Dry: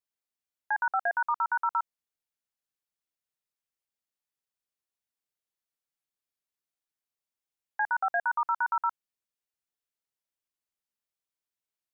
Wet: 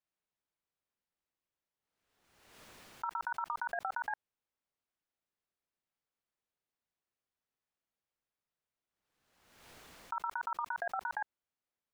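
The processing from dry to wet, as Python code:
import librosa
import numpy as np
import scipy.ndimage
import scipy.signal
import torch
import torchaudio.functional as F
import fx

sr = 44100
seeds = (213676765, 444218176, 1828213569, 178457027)

y = np.flip(x).copy()
y = fx.over_compress(y, sr, threshold_db=-31.0, ratio=-0.5)
y = fx.lowpass(y, sr, hz=1700.0, slope=6)
y = fx.pre_swell(y, sr, db_per_s=48.0)
y = y * librosa.db_to_amplitude(-2.0)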